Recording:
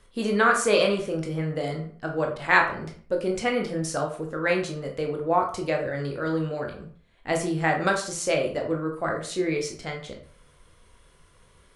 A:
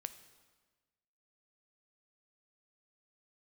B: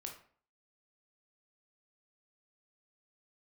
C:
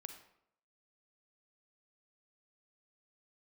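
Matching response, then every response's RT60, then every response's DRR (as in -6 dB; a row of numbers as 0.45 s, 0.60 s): B; 1.3 s, 0.50 s, 0.75 s; 11.0 dB, 1.5 dB, 6.0 dB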